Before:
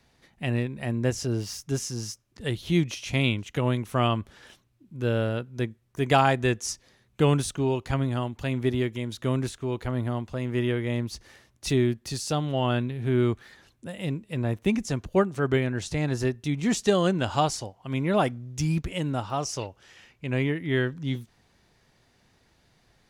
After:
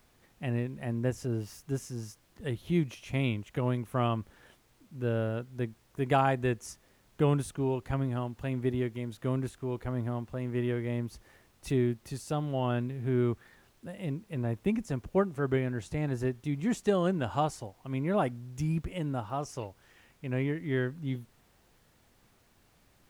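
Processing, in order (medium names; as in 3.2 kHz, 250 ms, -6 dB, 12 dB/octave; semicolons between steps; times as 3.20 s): peaking EQ 4.9 kHz -11 dB 1.7 oct; added noise pink -62 dBFS; trim -4.5 dB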